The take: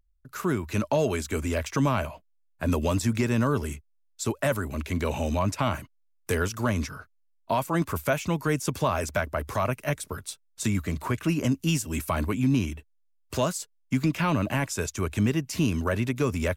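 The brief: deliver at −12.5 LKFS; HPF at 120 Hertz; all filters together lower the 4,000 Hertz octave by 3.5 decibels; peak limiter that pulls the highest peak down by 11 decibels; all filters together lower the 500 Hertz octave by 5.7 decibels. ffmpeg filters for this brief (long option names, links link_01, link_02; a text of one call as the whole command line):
ffmpeg -i in.wav -af "highpass=120,equalizer=frequency=500:width_type=o:gain=-7.5,equalizer=frequency=4000:width_type=o:gain=-5,volume=23.5dB,alimiter=limit=-2dB:level=0:latency=1" out.wav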